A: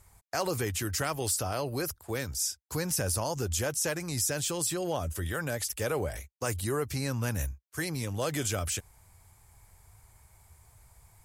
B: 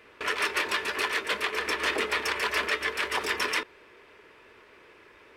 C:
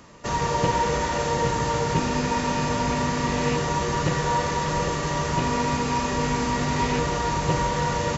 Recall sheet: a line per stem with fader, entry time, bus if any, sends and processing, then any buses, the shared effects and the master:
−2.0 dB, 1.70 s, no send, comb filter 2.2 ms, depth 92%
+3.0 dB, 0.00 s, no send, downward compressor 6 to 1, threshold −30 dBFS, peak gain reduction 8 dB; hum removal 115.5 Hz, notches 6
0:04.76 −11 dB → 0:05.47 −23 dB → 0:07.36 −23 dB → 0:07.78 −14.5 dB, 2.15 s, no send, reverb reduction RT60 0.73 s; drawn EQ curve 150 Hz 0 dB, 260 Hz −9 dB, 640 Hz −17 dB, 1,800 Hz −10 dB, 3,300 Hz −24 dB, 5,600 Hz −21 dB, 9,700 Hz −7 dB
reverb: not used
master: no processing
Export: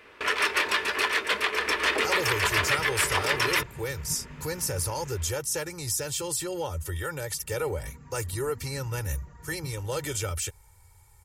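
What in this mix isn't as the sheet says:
stem B: missing downward compressor 6 to 1, threshold −30 dBFS, peak gain reduction 8 dB
master: extra parametric band 290 Hz −2 dB 1.8 octaves

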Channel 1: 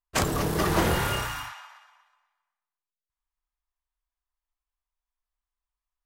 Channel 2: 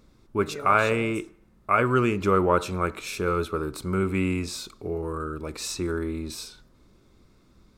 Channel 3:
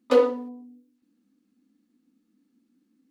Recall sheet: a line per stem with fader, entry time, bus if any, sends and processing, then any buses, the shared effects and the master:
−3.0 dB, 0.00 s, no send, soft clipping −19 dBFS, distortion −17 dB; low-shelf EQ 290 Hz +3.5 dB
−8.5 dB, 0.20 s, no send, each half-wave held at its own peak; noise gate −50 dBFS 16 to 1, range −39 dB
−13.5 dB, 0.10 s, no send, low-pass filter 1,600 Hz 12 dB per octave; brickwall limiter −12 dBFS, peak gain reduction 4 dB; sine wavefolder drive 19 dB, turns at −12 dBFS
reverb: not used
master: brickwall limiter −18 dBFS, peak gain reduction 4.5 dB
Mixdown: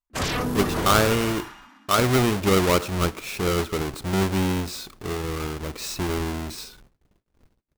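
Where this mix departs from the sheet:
stem 2 −8.5 dB → −2.5 dB
master: missing brickwall limiter −18 dBFS, peak gain reduction 4.5 dB

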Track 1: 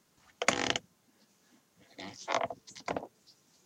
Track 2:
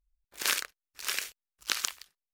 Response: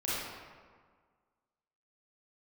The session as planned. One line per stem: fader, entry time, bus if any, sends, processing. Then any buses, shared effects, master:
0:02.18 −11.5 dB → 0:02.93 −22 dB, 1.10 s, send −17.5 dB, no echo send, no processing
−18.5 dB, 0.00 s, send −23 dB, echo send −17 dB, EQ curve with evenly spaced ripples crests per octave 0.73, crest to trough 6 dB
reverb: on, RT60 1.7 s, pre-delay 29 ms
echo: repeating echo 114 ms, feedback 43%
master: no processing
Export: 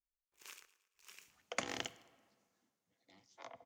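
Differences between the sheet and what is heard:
stem 2 −18.5 dB → −26.5 dB
reverb return −6.0 dB

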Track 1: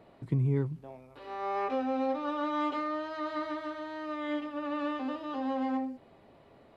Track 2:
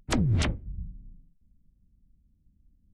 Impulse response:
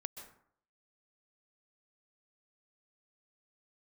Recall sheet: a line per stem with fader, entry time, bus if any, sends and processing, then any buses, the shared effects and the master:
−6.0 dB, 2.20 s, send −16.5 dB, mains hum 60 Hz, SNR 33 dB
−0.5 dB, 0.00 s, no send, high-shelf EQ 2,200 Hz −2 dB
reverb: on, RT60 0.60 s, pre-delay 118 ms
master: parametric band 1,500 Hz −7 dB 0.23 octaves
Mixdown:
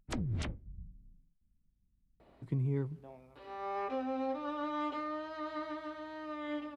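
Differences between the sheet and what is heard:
stem 2 −0.5 dB → −11.0 dB
master: missing parametric band 1,500 Hz −7 dB 0.23 octaves

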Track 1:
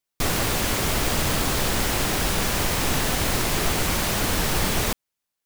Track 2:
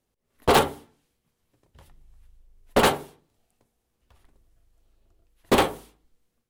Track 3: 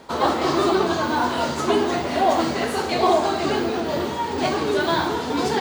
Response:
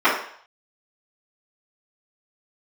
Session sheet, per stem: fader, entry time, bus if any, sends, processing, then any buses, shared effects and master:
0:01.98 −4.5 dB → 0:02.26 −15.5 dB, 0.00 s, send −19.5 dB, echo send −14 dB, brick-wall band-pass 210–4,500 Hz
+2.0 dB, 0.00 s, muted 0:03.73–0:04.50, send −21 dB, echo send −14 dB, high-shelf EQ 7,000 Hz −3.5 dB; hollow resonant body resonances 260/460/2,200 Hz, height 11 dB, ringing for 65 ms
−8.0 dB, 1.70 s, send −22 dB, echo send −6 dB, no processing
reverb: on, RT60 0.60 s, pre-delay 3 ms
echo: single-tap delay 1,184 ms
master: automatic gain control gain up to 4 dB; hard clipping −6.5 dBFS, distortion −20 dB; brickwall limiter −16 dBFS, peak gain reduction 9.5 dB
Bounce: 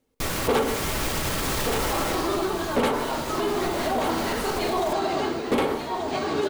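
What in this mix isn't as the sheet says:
stem 1: missing brick-wall band-pass 210–4,500 Hz
reverb return −9.0 dB

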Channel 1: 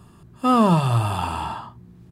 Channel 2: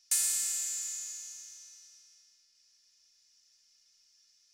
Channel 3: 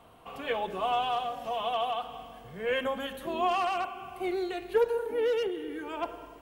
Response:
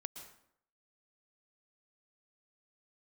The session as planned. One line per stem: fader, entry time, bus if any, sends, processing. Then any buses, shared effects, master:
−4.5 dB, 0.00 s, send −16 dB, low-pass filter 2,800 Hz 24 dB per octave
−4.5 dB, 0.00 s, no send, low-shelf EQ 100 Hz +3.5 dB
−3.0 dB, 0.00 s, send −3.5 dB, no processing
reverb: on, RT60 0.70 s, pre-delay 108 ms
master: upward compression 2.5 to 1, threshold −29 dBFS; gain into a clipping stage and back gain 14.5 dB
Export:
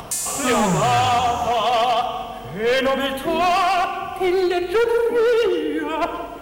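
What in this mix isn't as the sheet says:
stem 2 −4.5 dB → +3.5 dB
stem 3 −3.0 dB → +6.5 dB
reverb return +9.0 dB

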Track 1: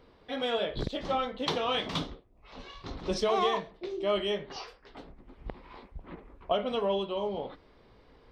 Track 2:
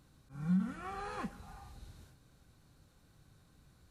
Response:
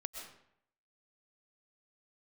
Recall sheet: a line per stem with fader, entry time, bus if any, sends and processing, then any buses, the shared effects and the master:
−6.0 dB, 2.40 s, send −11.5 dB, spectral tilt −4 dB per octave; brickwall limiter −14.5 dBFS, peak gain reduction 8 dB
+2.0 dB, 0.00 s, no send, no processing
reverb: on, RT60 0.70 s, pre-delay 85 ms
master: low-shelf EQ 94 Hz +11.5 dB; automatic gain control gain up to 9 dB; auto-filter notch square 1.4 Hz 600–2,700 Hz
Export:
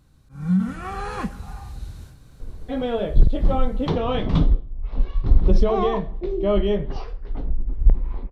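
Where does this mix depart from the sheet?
stem 1: send −11.5 dB → −20.5 dB
master: missing auto-filter notch square 1.4 Hz 600–2,700 Hz

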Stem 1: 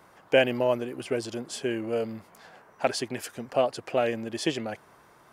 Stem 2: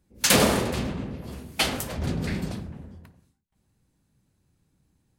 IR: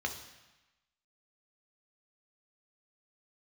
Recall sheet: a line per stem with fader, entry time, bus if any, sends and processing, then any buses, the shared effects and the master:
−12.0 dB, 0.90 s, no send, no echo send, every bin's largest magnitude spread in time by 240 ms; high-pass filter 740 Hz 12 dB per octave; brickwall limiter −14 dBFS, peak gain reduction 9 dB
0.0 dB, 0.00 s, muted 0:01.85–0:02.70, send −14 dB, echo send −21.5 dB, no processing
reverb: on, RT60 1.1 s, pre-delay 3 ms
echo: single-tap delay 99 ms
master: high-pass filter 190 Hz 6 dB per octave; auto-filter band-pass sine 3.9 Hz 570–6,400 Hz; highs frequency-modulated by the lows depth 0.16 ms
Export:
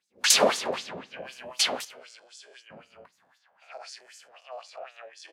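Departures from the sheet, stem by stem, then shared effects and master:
stem 2 0.0 dB → +9.0 dB
master: missing highs frequency-modulated by the lows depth 0.16 ms

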